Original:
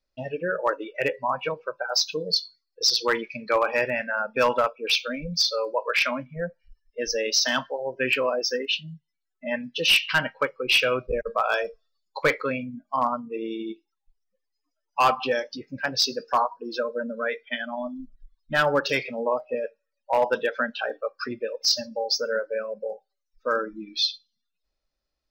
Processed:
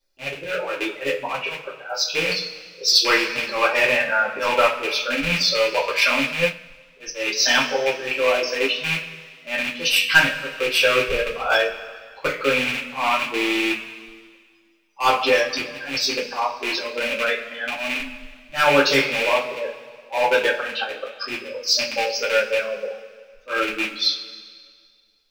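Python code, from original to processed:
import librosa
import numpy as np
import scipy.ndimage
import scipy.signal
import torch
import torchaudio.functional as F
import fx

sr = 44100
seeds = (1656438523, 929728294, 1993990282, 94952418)

y = fx.rattle_buzz(x, sr, strikes_db=-40.0, level_db=-17.0)
y = fx.high_shelf(y, sr, hz=2600.0, db=7.0)
y = fx.auto_swell(y, sr, attack_ms=151.0)
y = fx.rev_double_slope(y, sr, seeds[0], early_s=0.23, late_s=1.9, knee_db=-19, drr_db=-7.0)
y = fx.upward_expand(y, sr, threshold_db=-30.0, expansion=1.5, at=(6.33, 7.4))
y = F.gain(torch.from_numpy(y), -2.5).numpy()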